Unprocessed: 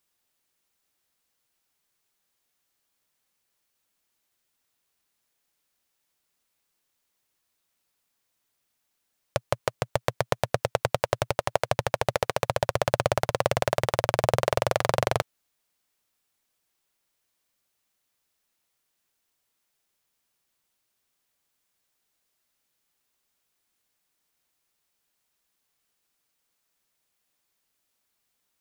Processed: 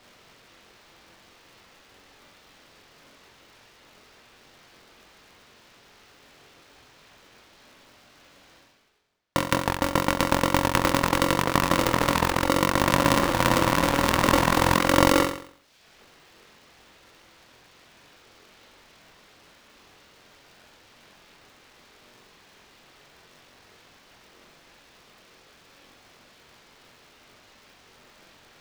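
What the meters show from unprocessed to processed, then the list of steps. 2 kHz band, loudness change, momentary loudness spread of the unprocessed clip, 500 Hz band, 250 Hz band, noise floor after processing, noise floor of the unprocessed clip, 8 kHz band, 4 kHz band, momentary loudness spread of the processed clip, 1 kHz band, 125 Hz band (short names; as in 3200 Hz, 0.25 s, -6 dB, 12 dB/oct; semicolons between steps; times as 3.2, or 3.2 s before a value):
+7.5 dB, +5.0 dB, 5 LU, +0.5 dB, +15.0 dB, -56 dBFS, -78 dBFS, +7.0 dB, +7.0 dB, 5 LU, +6.0 dB, +3.5 dB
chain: reverb removal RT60 0.6 s; tone controls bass +4 dB, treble +2 dB; reverse; upward compressor, threshold -27 dBFS; reverse; air absorption 220 m; on a send: flutter echo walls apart 3.8 m, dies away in 0.55 s; on the sum: polarity switched at an audio rate 420 Hz; gain +1.5 dB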